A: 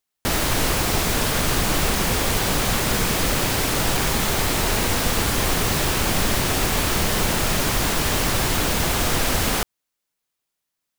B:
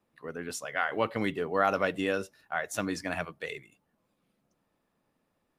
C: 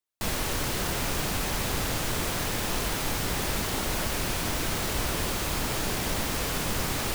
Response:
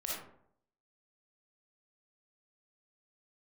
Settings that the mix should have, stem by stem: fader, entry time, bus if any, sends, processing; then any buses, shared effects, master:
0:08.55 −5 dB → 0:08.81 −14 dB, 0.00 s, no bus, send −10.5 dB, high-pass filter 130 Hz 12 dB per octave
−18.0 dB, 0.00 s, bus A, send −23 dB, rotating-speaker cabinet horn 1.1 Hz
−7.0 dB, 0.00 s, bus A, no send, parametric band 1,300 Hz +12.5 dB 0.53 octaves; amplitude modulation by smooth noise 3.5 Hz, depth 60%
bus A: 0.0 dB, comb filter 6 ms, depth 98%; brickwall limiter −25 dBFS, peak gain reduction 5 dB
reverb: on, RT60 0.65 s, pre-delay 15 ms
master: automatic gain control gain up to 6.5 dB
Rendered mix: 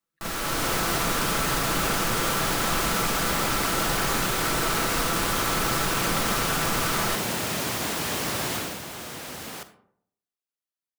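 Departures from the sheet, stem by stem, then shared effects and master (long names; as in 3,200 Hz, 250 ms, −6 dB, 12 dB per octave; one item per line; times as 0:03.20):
stem A −5.0 dB → −14.0 dB
stem C −7.0 dB → 0.0 dB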